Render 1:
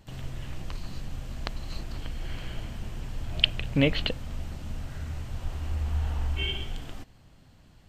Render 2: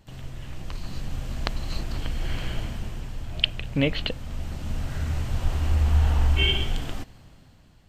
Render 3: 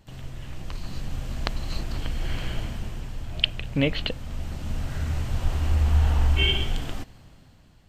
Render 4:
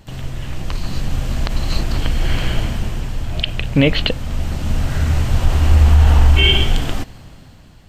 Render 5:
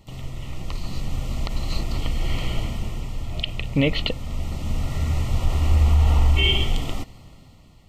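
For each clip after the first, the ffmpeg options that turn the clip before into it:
ffmpeg -i in.wav -af "dynaudnorm=framelen=190:gausssize=9:maxgain=9.5dB,volume=-1dB" out.wav
ffmpeg -i in.wav -af anull out.wav
ffmpeg -i in.wav -af "alimiter=level_in=12dB:limit=-1dB:release=50:level=0:latency=1,volume=-1dB" out.wav
ffmpeg -i in.wav -af "asuperstop=centerf=1600:order=20:qfactor=4.1,volume=-6.5dB" out.wav

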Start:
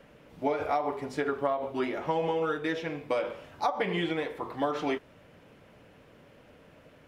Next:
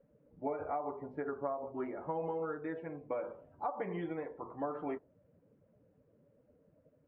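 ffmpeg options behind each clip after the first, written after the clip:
ffmpeg -i in.wav -af "lowpass=1400,afftdn=noise_reduction=15:noise_floor=-48,volume=-8dB" out.wav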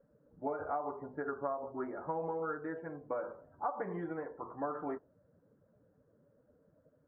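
ffmpeg -i in.wav -af "highshelf=frequency=2000:width_type=q:width=3:gain=-9,volume=-1dB" out.wav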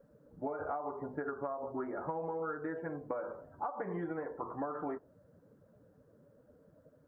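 ffmpeg -i in.wav -af "acompressor=threshold=-40dB:ratio=6,volume=5.5dB" out.wav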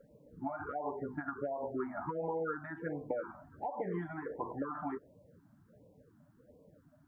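ffmpeg -i in.wav -af "afftfilt=real='re*(1-between(b*sr/1024,410*pow(1600/410,0.5+0.5*sin(2*PI*1.4*pts/sr))/1.41,410*pow(1600/410,0.5+0.5*sin(2*PI*1.4*pts/sr))*1.41))':imag='im*(1-between(b*sr/1024,410*pow(1600/410,0.5+0.5*sin(2*PI*1.4*pts/sr))/1.41,410*pow(1600/410,0.5+0.5*sin(2*PI*1.4*pts/sr))*1.41))':win_size=1024:overlap=0.75,volume=2dB" out.wav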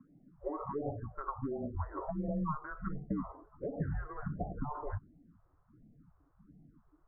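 ffmpeg -i in.wav -af "asubboost=boost=9.5:cutoff=240,highpass=frequency=410:width_type=q:width=0.5412,highpass=frequency=410:width_type=q:width=1.307,lowpass=frequency=2200:width_type=q:width=0.5176,lowpass=frequency=2200:width_type=q:width=0.7071,lowpass=frequency=2200:width_type=q:width=1.932,afreqshift=-300,volume=3.5dB" out.wav

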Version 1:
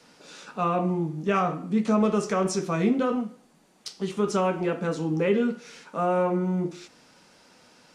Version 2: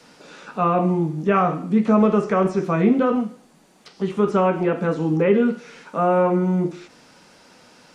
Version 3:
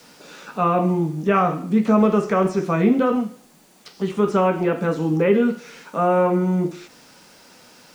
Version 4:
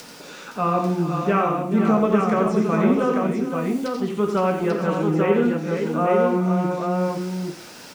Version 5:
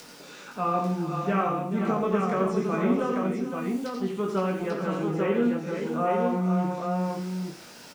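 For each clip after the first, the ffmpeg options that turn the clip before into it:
ffmpeg -i in.wav -filter_complex "[0:a]acrossover=split=2600[link_01][link_02];[link_02]acompressor=threshold=-57dB:ratio=4:attack=1:release=60[link_03];[link_01][link_03]amix=inputs=2:normalize=0,volume=6dB" out.wav
ffmpeg -i in.wav -af "acrusher=bits=9:mix=0:aa=0.000001,highshelf=frequency=4000:gain=5.5" out.wav
ffmpeg -i in.wav -af "acompressor=mode=upward:threshold=-30dB:ratio=2.5,aecho=1:1:87|433|515|841:0.447|0.211|0.447|0.596,volume=-3dB" out.wav
ffmpeg -i in.wav -filter_complex "[0:a]asplit=2[link_01][link_02];[link_02]adelay=21,volume=-5dB[link_03];[link_01][link_03]amix=inputs=2:normalize=0,volume=-6.5dB" out.wav

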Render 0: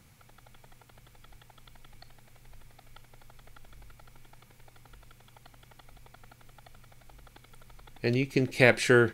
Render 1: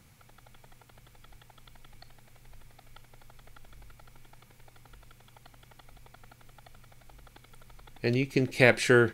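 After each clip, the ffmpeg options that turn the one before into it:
ffmpeg -i in.wav -af anull out.wav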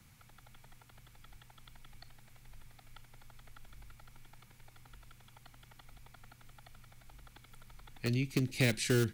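ffmpeg -i in.wav -filter_complex "[0:a]acrossover=split=390|620|6300[link_01][link_02][link_03][link_04];[link_02]acrusher=bits=4:mix=0:aa=0.000001[link_05];[link_01][link_05][link_03][link_04]amix=inputs=4:normalize=0,acrossover=split=300|3000[link_06][link_07][link_08];[link_07]acompressor=threshold=-44dB:ratio=2.5[link_09];[link_06][link_09][link_08]amix=inputs=3:normalize=0,volume=-2dB" out.wav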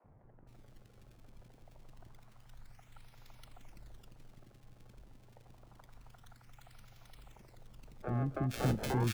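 ffmpeg -i in.wav -filter_complex "[0:a]acrusher=samples=26:mix=1:aa=0.000001:lfo=1:lforange=41.6:lforate=0.27,acrossover=split=380|1600[link_01][link_02][link_03];[link_01]adelay=40[link_04];[link_03]adelay=470[link_05];[link_04][link_02][link_05]amix=inputs=3:normalize=0,asoftclip=type=tanh:threshold=-20.5dB" out.wav

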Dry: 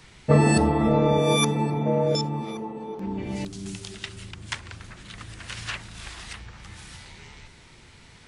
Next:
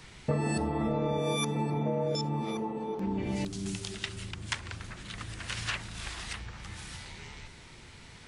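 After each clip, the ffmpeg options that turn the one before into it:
ffmpeg -i in.wav -af "acompressor=threshold=-27dB:ratio=6" out.wav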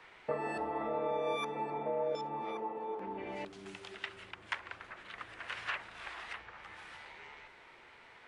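ffmpeg -i in.wav -filter_complex "[0:a]acrossover=split=400 2700:gain=0.0708 1 0.0891[link_01][link_02][link_03];[link_01][link_02][link_03]amix=inputs=3:normalize=0" out.wav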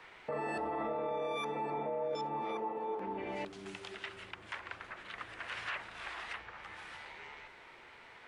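ffmpeg -i in.wav -af "alimiter=level_in=7dB:limit=-24dB:level=0:latency=1:release=11,volume=-7dB,volume=2dB" out.wav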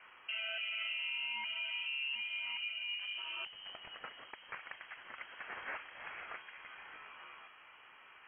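ffmpeg -i in.wav -af "lowpass=frequency=2800:width_type=q:width=0.5098,lowpass=frequency=2800:width_type=q:width=0.6013,lowpass=frequency=2800:width_type=q:width=0.9,lowpass=frequency=2800:width_type=q:width=2.563,afreqshift=-3300,volume=-3dB" out.wav

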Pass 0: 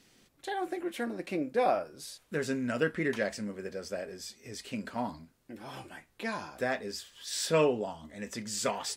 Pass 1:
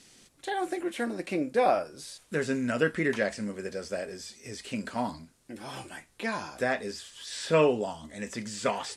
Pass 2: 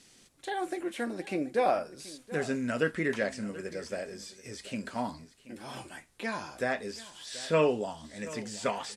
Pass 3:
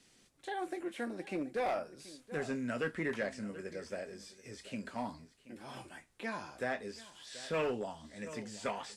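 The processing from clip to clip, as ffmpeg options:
ffmpeg -i in.wav -filter_complex "[0:a]acrossover=split=3100[link_01][link_02];[link_02]acompressor=threshold=-52dB:ratio=4:attack=1:release=60[link_03];[link_01][link_03]amix=inputs=2:normalize=0,lowpass=frequency=10000:width=0.5412,lowpass=frequency=10000:width=1.3066,aemphasis=mode=production:type=50kf,volume=3dB" out.wav
ffmpeg -i in.wav -af "aecho=1:1:731:0.133,volume=-2.5dB" out.wav
ffmpeg -i in.wav -filter_complex "[0:a]acrossover=split=100|1300|3500[link_01][link_02][link_03][link_04];[link_02]asoftclip=type=hard:threshold=-26dB[link_05];[link_04]flanger=delay=20:depth=5:speed=2.5[link_06];[link_01][link_05][link_03][link_06]amix=inputs=4:normalize=0,volume=-5dB" out.wav

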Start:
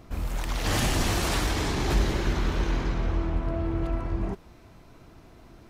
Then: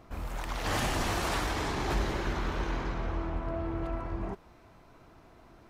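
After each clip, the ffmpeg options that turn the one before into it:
ffmpeg -i in.wav -af "equalizer=frequency=1000:width=0.51:gain=7,volume=-7.5dB" out.wav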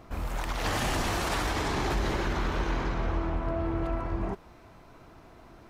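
ffmpeg -i in.wav -af "alimiter=limit=-24dB:level=0:latency=1:release=47,volume=4dB" out.wav

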